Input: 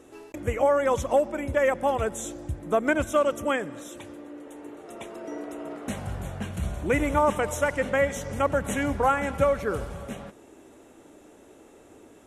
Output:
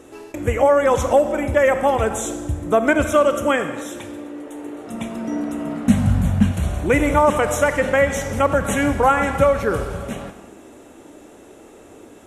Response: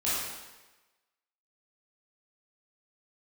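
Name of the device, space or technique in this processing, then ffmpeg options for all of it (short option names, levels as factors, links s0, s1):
ducked reverb: -filter_complex "[0:a]asplit=3[s0][s1][s2];[1:a]atrim=start_sample=2205[s3];[s1][s3]afir=irnorm=-1:irlink=0[s4];[s2]apad=whole_len=540722[s5];[s4][s5]sidechaincompress=threshold=0.0631:ratio=8:attack=16:release=121,volume=0.178[s6];[s0][s6]amix=inputs=2:normalize=0,asettb=1/sr,asplit=3[s7][s8][s9];[s7]atrim=end=4.874[s10];[s8]atrim=start=4.87:end=6.52,asetpts=PTS-STARTPTS,afade=t=in:d=0.004:c=qsin,afade=t=out:st=1.646:d=0.004:c=qsin,lowshelf=f=290:t=q:w=3:g=7.5[s11];[s9]atrim=start=6.516[s12];[s10][s11]acrossfade=d=0.004:c1=hsin:c2=qsin[s13];[s13][s12]acrossfade=d=0.004:c1=qsin:c2=hsin,volume=2"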